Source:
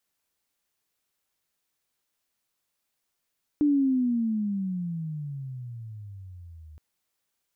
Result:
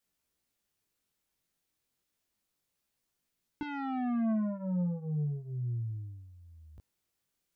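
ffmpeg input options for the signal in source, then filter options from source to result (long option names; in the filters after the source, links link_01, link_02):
-f lavfi -i "aevalsrc='pow(10,(-18-26*t/3.17)/20)*sin(2*PI*299*3.17/(-24*log(2)/12)*(exp(-24*log(2)/12*t/3.17)-1))':duration=3.17:sample_rate=44100"
-filter_complex "[0:a]asplit=2[link_01][link_02];[link_02]adynamicsmooth=sensitivity=6:basefreq=570,volume=1.5dB[link_03];[link_01][link_03]amix=inputs=2:normalize=0,asoftclip=type=tanh:threshold=-27.5dB,flanger=delay=16:depth=7:speed=0.33"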